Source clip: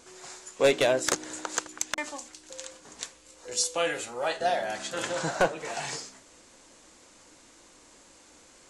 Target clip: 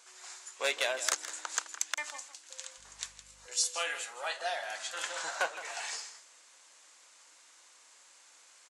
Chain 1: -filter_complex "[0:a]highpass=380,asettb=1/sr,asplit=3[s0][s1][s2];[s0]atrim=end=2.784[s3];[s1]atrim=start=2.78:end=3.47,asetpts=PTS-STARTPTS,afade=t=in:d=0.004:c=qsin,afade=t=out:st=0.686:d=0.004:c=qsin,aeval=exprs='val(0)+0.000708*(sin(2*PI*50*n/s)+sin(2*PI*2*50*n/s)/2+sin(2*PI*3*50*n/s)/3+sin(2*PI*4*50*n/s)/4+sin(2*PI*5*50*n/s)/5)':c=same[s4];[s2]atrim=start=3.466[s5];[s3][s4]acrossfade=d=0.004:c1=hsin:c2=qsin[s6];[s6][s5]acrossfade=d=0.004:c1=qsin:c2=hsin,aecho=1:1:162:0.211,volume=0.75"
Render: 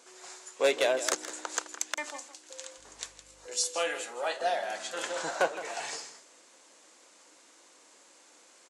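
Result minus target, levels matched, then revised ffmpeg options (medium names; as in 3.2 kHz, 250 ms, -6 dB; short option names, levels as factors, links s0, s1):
500 Hz band +6.5 dB
-filter_complex "[0:a]highpass=1000,asettb=1/sr,asplit=3[s0][s1][s2];[s0]atrim=end=2.784[s3];[s1]atrim=start=2.78:end=3.47,asetpts=PTS-STARTPTS,afade=t=in:d=0.004:c=qsin,afade=t=out:st=0.686:d=0.004:c=qsin,aeval=exprs='val(0)+0.000708*(sin(2*PI*50*n/s)+sin(2*PI*2*50*n/s)/2+sin(2*PI*3*50*n/s)/3+sin(2*PI*4*50*n/s)/4+sin(2*PI*5*50*n/s)/5)':c=same[s4];[s2]atrim=start=3.466[s5];[s3][s4]acrossfade=d=0.004:c1=hsin:c2=qsin[s6];[s6][s5]acrossfade=d=0.004:c1=qsin:c2=hsin,aecho=1:1:162:0.211,volume=0.75"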